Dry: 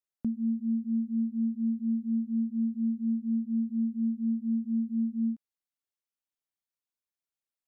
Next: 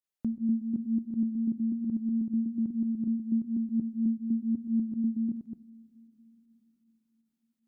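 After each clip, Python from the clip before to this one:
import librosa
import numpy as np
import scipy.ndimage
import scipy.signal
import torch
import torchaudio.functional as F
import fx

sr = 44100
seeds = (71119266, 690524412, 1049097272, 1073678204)

y = fx.reverse_delay(x, sr, ms=123, wet_db=-6.0)
y = fx.volume_shaper(y, sr, bpm=158, per_beat=1, depth_db=-15, release_ms=72.0, shape='fast start')
y = fx.rev_double_slope(y, sr, seeds[0], early_s=0.51, late_s=5.0, knee_db=-16, drr_db=14.5)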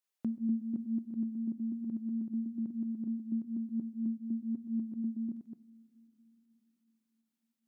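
y = fx.rider(x, sr, range_db=10, speed_s=2.0)
y = fx.highpass(y, sr, hz=400.0, slope=6)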